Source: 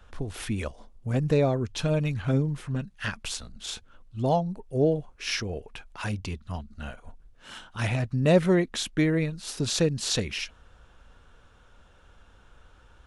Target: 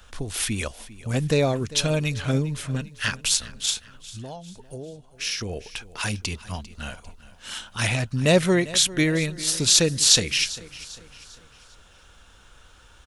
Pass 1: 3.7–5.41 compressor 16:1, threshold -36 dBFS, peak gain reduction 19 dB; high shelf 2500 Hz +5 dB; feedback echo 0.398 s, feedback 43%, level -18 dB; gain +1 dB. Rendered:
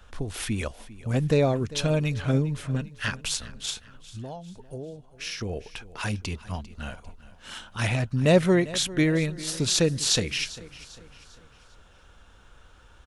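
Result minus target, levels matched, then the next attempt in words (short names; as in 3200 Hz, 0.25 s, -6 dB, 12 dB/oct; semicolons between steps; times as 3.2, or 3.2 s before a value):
4000 Hz band -3.0 dB
3.7–5.41 compressor 16:1, threshold -36 dBFS, peak gain reduction 19 dB; high shelf 2500 Hz +14.5 dB; feedback echo 0.398 s, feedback 43%, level -18 dB; gain +1 dB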